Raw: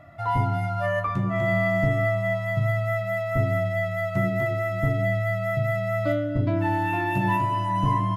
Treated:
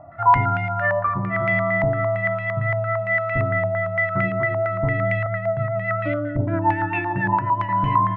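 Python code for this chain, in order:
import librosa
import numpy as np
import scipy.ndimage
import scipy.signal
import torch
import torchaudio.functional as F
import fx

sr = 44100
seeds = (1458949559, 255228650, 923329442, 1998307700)

y = fx.rotary(x, sr, hz=7.5, at=(5.26, 7.69))
y = fx.rider(y, sr, range_db=10, speed_s=2.0)
y = fx.filter_held_lowpass(y, sr, hz=8.8, low_hz=870.0, high_hz=2400.0)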